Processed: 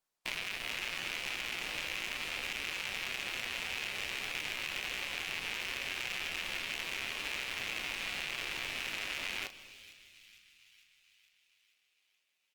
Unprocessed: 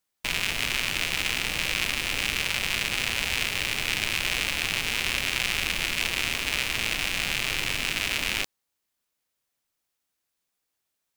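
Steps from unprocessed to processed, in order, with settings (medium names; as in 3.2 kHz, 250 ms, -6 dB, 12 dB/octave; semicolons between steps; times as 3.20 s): in parallel at -8.5 dB: integer overflow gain 12 dB; on the sum: doubling 25 ms -11 dB; tempo 0.89×; tone controls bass -9 dB, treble -1 dB; feedback echo behind a high-pass 453 ms, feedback 60%, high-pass 2.8 kHz, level -19.5 dB; on a send at -16.5 dB: reverberation RT60 1.8 s, pre-delay 5 ms; on the sum: compression 4:1, threshold -26 dBFS, peak gain reduction 6.5 dB; treble shelf 5.9 kHz -5.5 dB; trim -6 dB; Opus 32 kbps 48 kHz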